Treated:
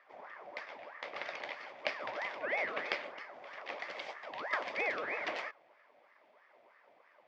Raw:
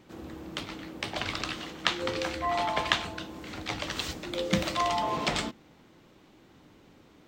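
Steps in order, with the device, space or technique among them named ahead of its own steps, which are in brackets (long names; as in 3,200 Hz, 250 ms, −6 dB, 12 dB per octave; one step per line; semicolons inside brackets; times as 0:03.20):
voice changer toy (ring modulator whose carrier an LFO sweeps 960 Hz, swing 60%, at 3.1 Hz; loudspeaker in its box 430–4,300 Hz, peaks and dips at 590 Hz +9 dB, 1,400 Hz −4 dB, 2,100 Hz +7 dB, 4,000 Hz −9 dB)
parametric band 2,900 Hz −4 dB 0.33 octaves
level −5.5 dB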